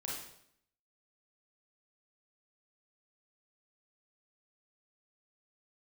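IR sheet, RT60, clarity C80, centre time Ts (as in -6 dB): 0.70 s, 5.0 dB, 57 ms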